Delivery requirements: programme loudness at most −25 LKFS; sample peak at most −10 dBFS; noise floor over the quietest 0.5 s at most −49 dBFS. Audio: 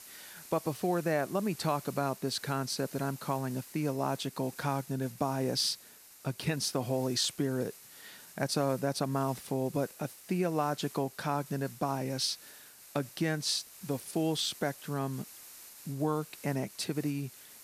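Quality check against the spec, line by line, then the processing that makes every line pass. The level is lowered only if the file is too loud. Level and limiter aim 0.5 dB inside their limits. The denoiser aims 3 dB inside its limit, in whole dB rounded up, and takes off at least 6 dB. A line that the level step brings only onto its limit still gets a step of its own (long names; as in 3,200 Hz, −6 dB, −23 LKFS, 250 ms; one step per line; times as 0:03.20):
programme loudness −33.5 LKFS: in spec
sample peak −14.0 dBFS: in spec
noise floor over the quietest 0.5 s −55 dBFS: in spec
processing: no processing needed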